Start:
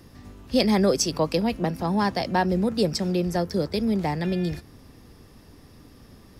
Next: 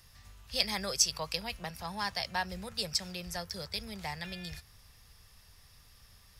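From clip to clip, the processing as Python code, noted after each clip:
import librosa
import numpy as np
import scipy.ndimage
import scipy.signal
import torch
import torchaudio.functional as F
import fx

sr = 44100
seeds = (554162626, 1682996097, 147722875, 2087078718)

y = fx.tone_stack(x, sr, knobs='10-0-10')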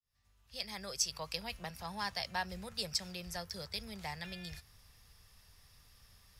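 y = fx.fade_in_head(x, sr, length_s=1.52)
y = y * librosa.db_to_amplitude(-3.5)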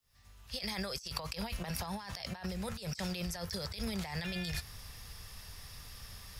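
y = fx.over_compress(x, sr, threshold_db=-48.0, ratio=-1.0)
y = y * librosa.db_to_amplitude(8.0)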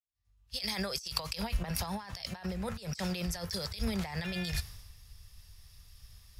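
y = fx.band_widen(x, sr, depth_pct=100)
y = y * librosa.db_to_amplitude(2.5)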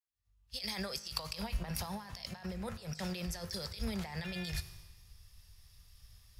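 y = fx.comb_fb(x, sr, f0_hz=52.0, decay_s=1.3, harmonics='all', damping=0.0, mix_pct=50)
y = y * librosa.db_to_amplitude(1.0)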